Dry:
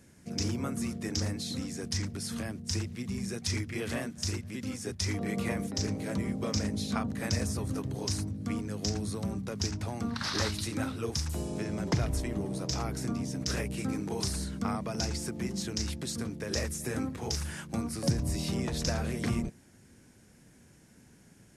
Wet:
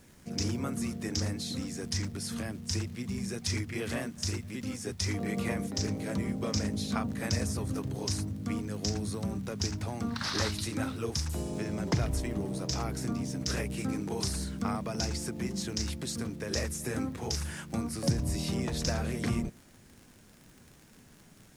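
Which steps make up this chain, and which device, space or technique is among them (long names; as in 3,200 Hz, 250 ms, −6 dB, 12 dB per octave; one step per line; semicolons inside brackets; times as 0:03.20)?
vinyl LP (surface crackle 63 per second −43 dBFS; pink noise bed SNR 30 dB)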